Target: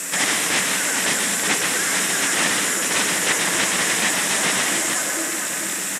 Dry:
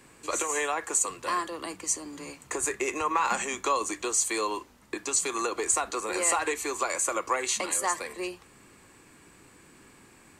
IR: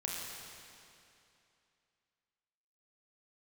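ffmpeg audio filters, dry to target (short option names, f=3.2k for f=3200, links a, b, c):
-filter_complex "[0:a]asetrate=76440,aresample=44100,asplit=2[a][b];[b]adelay=439,lowpass=f=2.3k:p=1,volume=-13dB,asplit=2[c][d];[d]adelay=439,lowpass=f=2.3k:p=1,volume=0.36,asplit=2[e][f];[f]adelay=439,lowpass=f=2.3k:p=1,volume=0.36,asplit=2[g][h];[h]adelay=439,lowpass=f=2.3k:p=1,volume=0.36[i];[a][c][e][g][i]amix=inputs=5:normalize=0,afreqshift=-300,asplit=2[j][k];[k]asetrate=58866,aresample=44100,atempo=0.749154,volume=-16dB[l];[j][l]amix=inputs=2:normalize=0,alimiter=limit=-22.5dB:level=0:latency=1:release=492,asplit=2[m][n];[n]highpass=f=720:p=1,volume=31dB,asoftclip=type=tanh:threshold=-22.5dB[o];[m][o]amix=inputs=2:normalize=0,lowpass=f=6k:p=1,volume=-6dB,aexciter=amount=15.1:drive=6.4:freq=5.6k,asplit=2[p][q];[1:a]atrim=start_sample=2205,adelay=122[r];[q][r]afir=irnorm=-1:irlink=0,volume=-2dB[s];[p][s]amix=inputs=2:normalize=0,aeval=exprs='0.316*(abs(mod(val(0)/0.316+3,4)-2)-1)':c=same,highpass=170,equalizer=f=190:t=q:w=4:g=9,equalizer=f=290:t=q:w=4:g=5,equalizer=f=1.9k:t=q:w=4:g=7,equalizer=f=4.5k:t=q:w=4:g=-9,equalizer=f=6.3k:t=q:w=4:g=-4,lowpass=f=8.7k:w=0.5412,lowpass=f=8.7k:w=1.3066"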